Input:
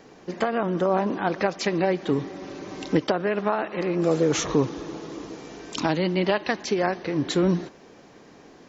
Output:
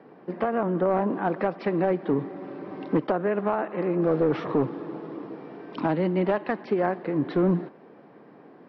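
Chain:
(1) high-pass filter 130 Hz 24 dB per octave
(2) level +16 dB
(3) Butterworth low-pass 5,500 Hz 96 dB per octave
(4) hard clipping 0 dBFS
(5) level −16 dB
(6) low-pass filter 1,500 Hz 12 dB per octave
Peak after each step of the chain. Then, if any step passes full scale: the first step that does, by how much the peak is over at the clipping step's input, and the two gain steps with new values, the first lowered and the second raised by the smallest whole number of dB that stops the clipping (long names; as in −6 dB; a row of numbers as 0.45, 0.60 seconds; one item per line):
−9.0, +7.0, +7.0, 0.0, −16.0, −15.5 dBFS
step 2, 7.0 dB
step 2 +9 dB, step 5 −9 dB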